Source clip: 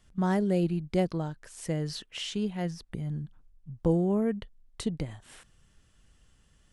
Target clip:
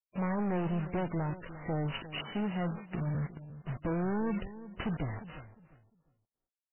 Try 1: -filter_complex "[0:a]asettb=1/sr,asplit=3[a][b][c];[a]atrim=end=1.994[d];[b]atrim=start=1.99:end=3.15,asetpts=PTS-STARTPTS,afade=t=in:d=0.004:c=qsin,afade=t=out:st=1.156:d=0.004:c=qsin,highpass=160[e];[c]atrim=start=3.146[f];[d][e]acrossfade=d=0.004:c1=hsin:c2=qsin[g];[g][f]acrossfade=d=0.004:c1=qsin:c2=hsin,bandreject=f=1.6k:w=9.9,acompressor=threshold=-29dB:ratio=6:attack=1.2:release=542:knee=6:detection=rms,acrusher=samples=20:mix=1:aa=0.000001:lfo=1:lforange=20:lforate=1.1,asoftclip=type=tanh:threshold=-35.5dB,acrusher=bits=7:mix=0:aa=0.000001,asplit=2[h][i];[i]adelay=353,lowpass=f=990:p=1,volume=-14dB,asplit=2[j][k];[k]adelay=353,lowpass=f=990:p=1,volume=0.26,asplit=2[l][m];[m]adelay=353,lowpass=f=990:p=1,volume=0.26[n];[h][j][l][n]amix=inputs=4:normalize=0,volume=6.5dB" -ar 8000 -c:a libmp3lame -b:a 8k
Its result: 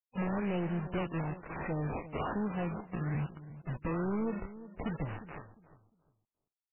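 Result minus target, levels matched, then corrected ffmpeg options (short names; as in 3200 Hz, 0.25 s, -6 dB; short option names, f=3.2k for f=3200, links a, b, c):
decimation with a swept rate: distortion +10 dB; compressor: peak gain reduction +5.5 dB
-filter_complex "[0:a]asettb=1/sr,asplit=3[a][b][c];[a]atrim=end=1.994[d];[b]atrim=start=1.99:end=3.15,asetpts=PTS-STARTPTS,afade=t=in:d=0.004:c=qsin,afade=t=out:st=1.156:d=0.004:c=qsin,highpass=160[e];[c]atrim=start=3.146[f];[d][e]acrossfade=d=0.004:c1=hsin:c2=qsin[g];[g][f]acrossfade=d=0.004:c1=qsin:c2=hsin,bandreject=f=1.6k:w=9.9,acompressor=threshold=-22.5dB:ratio=6:attack=1.2:release=542:knee=6:detection=rms,acrusher=samples=4:mix=1:aa=0.000001:lfo=1:lforange=4:lforate=1.1,asoftclip=type=tanh:threshold=-35.5dB,acrusher=bits=7:mix=0:aa=0.000001,asplit=2[h][i];[i]adelay=353,lowpass=f=990:p=1,volume=-14dB,asplit=2[j][k];[k]adelay=353,lowpass=f=990:p=1,volume=0.26,asplit=2[l][m];[m]adelay=353,lowpass=f=990:p=1,volume=0.26[n];[h][j][l][n]amix=inputs=4:normalize=0,volume=6.5dB" -ar 8000 -c:a libmp3lame -b:a 8k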